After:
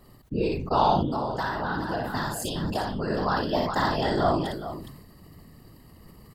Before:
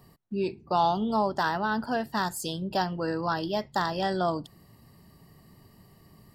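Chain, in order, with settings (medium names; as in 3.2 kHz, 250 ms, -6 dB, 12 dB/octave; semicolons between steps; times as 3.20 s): whisper effect; multi-tap echo 57/415 ms -4.5/-11.5 dB; 0.99–3.10 s: compression, threshold -27 dBFS, peak gain reduction 7.5 dB; bass shelf 120 Hz +5 dB; band-stop 5.6 kHz, Q 15; decay stretcher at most 48 dB/s; trim +1 dB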